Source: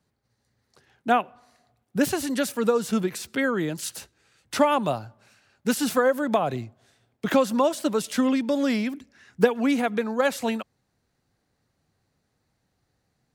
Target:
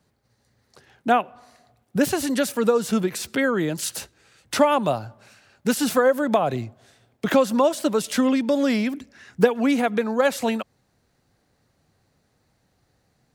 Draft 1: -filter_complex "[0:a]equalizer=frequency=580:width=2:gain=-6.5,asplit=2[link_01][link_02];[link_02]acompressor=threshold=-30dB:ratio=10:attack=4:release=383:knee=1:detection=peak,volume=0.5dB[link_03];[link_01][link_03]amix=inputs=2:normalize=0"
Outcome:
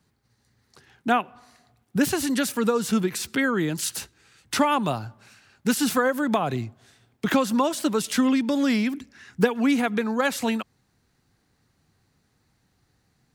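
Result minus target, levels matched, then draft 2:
500 Hz band −3.5 dB
-filter_complex "[0:a]equalizer=frequency=580:width=2:gain=2,asplit=2[link_01][link_02];[link_02]acompressor=threshold=-30dB:ratio=10:attack=4:release=383:knee=1:detection=peak,volume=0.5dB[link_03];[link_01][link_03]amix=inputs=2:normalize=0"

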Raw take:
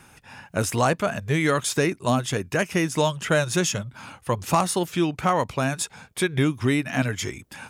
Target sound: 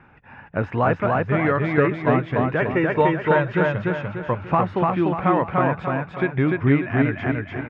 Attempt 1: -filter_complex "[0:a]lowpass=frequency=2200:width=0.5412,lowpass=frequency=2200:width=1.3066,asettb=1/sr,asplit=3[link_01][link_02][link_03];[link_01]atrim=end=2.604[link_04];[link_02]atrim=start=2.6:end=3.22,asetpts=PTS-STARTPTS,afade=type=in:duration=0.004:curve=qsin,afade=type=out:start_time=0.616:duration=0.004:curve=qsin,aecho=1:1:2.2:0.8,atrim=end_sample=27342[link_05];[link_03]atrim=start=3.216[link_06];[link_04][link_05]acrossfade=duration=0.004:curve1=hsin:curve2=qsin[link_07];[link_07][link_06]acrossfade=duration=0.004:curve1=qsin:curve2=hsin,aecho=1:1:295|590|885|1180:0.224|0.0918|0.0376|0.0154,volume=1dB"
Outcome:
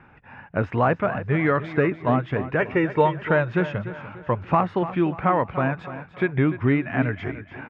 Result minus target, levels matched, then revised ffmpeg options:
echo-to-direct −11 dB
-filter_complex "[0:a]lowpass=frequency=2200:width=0.5412,lowpass=frequency=2200:width=1.3066,asettb=1/sr,asplit=3[link_01][link_02][link_03];[link_01]atrim=end=2.604[link_04];[link_02]atrim=start=2.6:end=3.22,asetpts=PTS-STARTPTS,afade=type=in:duration=0.004:curve=qsin,afade=type=out:start_time=0.616:duration=0.004:curve=qsin,aecho=1:1:2.2:0.8,atrim=end_sample=27342[link_05];[link_03]atrim=start=3.216[link_06];[link_04][link_05]acrossfade=duration=0.004:curve1=hsin:curve2=qsin[link_07];[link_07][link_06]acrossfade=duration=0.004:curve1=qsin:curve2=hsin,aecho=1:1:295|590|885|1180|1475:0.794|0.326|0.134|0.0547|0.0224,volume=1dB"

